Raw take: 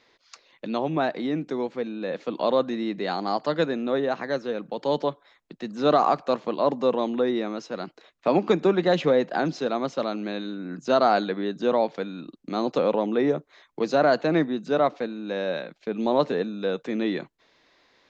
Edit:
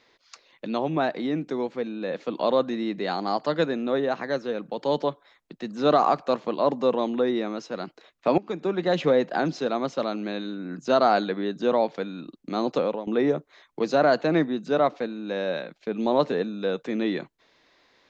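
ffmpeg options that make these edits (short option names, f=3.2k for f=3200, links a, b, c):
-filter_complex "[0:a]asplit=3[a][b][c];[a]atrim=end=8.38,asetpts=PTS-STARTPTS,afade=t=out:st=8.376:d=0.004:c=hsin:silence=0.141254[d];[b]atrim=start=8.38:end=13.07,asetpts=PTS-STARTPTS,afade=t=in:d=0.71:silence=0.141254,afade=t=out:st=4.37:d=0.32:silence=0.177828[e];[c]atrim=start=13.07,asetpts=PTS-STARTPTS,afade=t=in:d=0.004:c=hsin:silence=0.177828[f];[d][e][f]concat=n=3:v=0:a=1"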